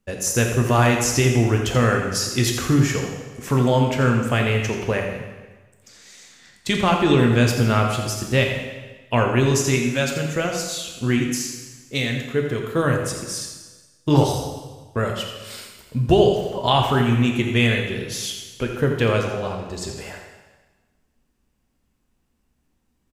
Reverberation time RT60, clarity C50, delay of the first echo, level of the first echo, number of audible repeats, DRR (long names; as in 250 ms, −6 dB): 1.3 s, 3.5 dB, 85 ms, −9.5 dB, 1, 1.0 dB